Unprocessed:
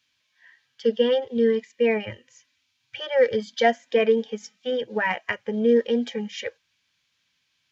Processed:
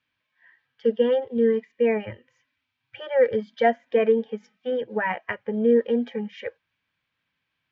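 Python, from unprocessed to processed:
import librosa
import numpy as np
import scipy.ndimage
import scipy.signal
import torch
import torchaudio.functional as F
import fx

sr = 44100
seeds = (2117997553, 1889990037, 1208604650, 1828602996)

y = scipy.signal.sosfilt(scipy.signal.butter(2, 1900.0, 'lowpass', fs=sr, output='sos'), x)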